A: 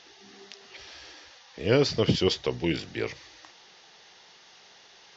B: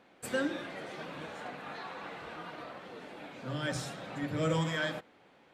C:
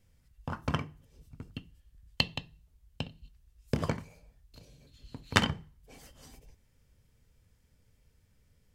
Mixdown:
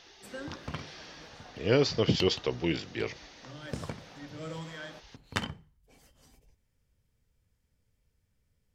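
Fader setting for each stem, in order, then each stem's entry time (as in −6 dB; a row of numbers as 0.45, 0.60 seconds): −2.5, −10.0, −7.5 decibels; 0.00, 0.00, 0.00 seconds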